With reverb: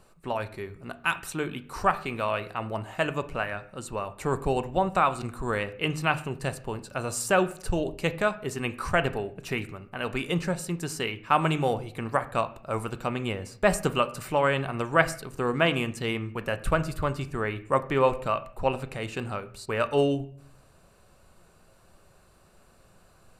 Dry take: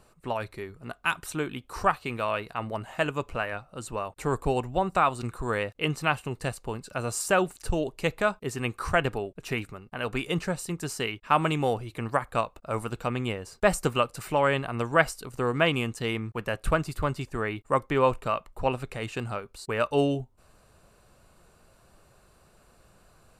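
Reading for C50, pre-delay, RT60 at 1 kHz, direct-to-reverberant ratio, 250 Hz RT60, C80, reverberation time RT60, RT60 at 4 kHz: 16.5 dB, 5 ms, 0.50 s, 10.5 dB, 0.75 s, 19.5 dB, 0.55 s, 0.45 s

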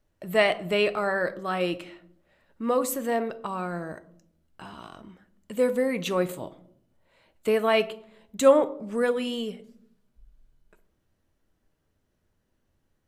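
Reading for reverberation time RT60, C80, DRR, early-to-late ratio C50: 0.65 s, 20.5 dB, 11.0 dB, 17.5 dB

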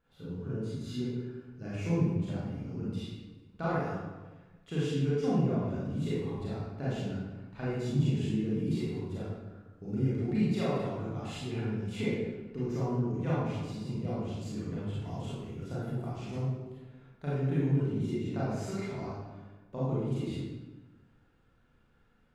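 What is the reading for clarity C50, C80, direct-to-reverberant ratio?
-3.0 dB, 0.5 dB, -9.5 dB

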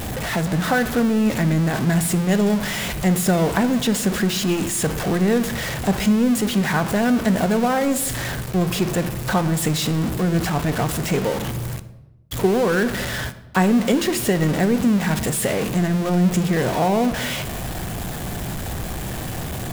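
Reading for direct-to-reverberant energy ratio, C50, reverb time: 11.5 dB, 14.5 dB, 1.0 s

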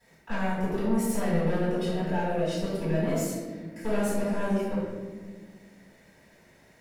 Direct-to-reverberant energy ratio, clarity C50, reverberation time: -14.0 dB, -1.5 dB, 1.5 s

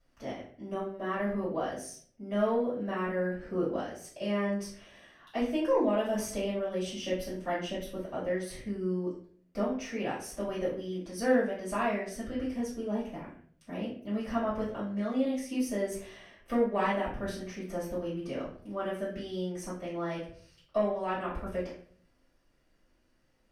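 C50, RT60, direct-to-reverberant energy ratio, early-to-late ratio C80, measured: 4.5 dB, 0.55 s, -11.0 dB, 9.0 dB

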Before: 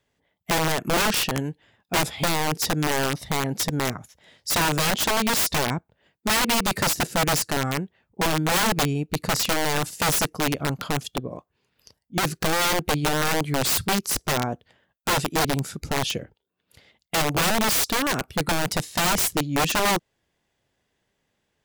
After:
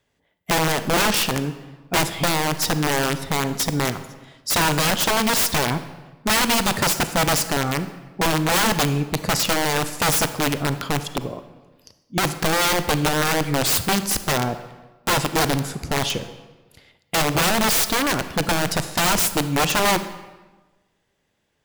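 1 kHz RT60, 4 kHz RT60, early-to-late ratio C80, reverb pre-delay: 1.2 s, 0.90 s, 13.5 dB, 33 ms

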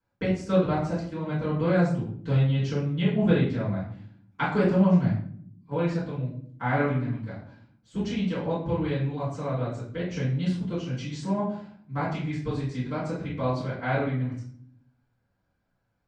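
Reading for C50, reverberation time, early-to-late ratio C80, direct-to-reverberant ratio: 4.0 dB, 0.60 s, 8.5 dB, -12.5 dB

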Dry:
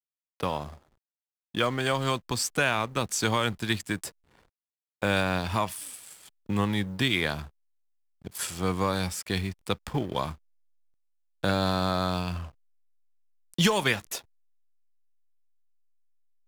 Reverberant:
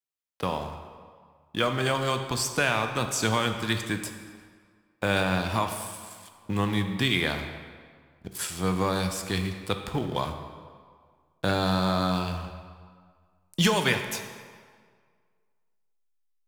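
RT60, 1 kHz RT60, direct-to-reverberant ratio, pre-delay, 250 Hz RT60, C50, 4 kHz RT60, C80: 1.8 s, 1.9 s, 6.0 dB, 10 ms, 1.7 s, 7.5 dB, 1.3 s, 8.5 dB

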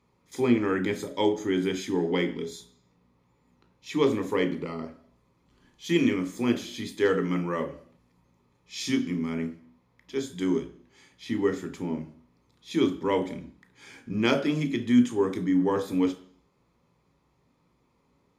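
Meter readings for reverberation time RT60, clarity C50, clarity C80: 0.55 s, 13.0 dB, 17.0 dB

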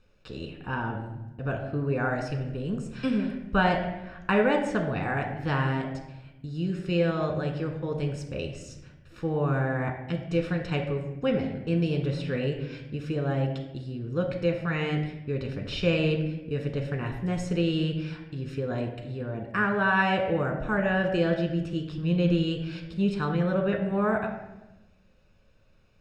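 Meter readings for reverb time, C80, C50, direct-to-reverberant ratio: 1.0 s, 9.5 dB, 7.5 dB, 3.0 dB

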